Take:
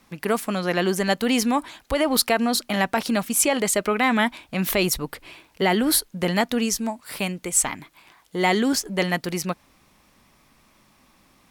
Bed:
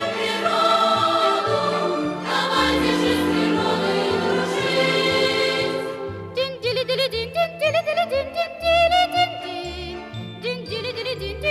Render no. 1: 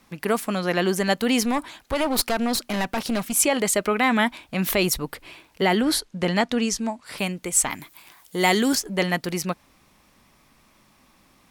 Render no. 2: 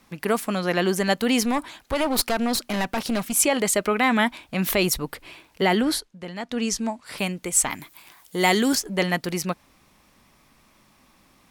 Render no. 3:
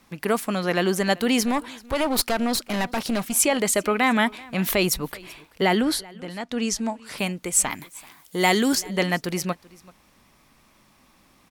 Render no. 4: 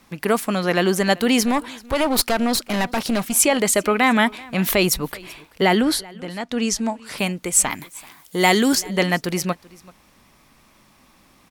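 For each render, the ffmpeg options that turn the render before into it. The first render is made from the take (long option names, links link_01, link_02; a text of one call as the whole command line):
ffmpeg -i in.wav -filter_complex "[0:a]asettb=1/sr,asplit=3[link_01][link_02][link_03];[link_01]atrim=end=1.424[link_04];[link_02]atrim=start=1.42:end=3.33,asetpts=PTS-STARTPTS,afade=type=in:duration=0.004:curve=qsin,afade=type=out:start_time=1.906:duration=0.004:curve=qsin,aeval=exprs='clip(val(0),-1,0.0562)':channel_layout=same[link_05];[link_03]atrim=start=3.326[link_06];[link_04][link_05]acrossfade=duration=0.004:curve1=hsin:curve2=qsin[link_07];[link_07][link_06]acrossfade=duration=0.004:curve1=qsin:curve2=hsin,asettb=1/sr,asplit=3[link_08][link_09][link_10];[link_08]atrim=end=5.814[link_11];[link_09]atrim=start=5.81:end=7.18,asetpts=PTS-STARTPTS,afade=type=in:duration=0.004:curve=qsin,afade=type=out:start_time=1.366:duration=0.004:curve=qsin,lowpass=7700[link_12];[link_10]atrim=start=7.176[link_13];[link_11][link_12]acrossfade=duration=0.004:curve1=hsin:curve2=qsin[link_14];[link_14][link_13]acrossfade=duration=0.004:curve1=qsin:curve2=hsin,asettb=1/sr,asplit=3[link_15][link_16][link_17];[link_15]atrim=end=7.704[link_18];[link_16]atrim=start=7.7:end=8.75,asetpts=PTS-STARTPTS,afade=type=in:duration=0.004:curve=qsin,afade=type=out:start_time=1.046:duration=0.004:curve=qsin,aemphasis=mode=production:type=50kf[link_19];[link_17]atrim=start=8.746[link_20];[link_18][link_19]acrossfade=duration=0.004:curve1=hsin:curve2=qsin[link_21];[link_21][link_20]acrossfade=duration=0.004:curve1=qsin:curve2=hsin" out.wav
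ffmpeg -i in.wav -filter_complex "[0:a]asplit=3[link_01][link_02][link_03];[link_01]atrim=end=6.16,asetpts=PTS-STARTPTS,afade=type=out:start_time=5.83:duration=0.33:silence=0.237137[link_04];[link_02]atrim=start=6.16:end=6.39,asetpts=PTS-STARTPTS,volume=-12.5dB[link_05];[link_03]atrim=start=6.39,asetpts=PTS-STARTPTS,afade=type=in:duration=0.33:silence=0.237137[link_06];[link_04][link_05][link_06]concat=n=3:v=0:a=1" out.wav
ffmpeg -i in.wav -af "aecho=1:1:385:0.0708" out.wav
ffmpeg -i in.wav -af "volume=3.5dB" out.wav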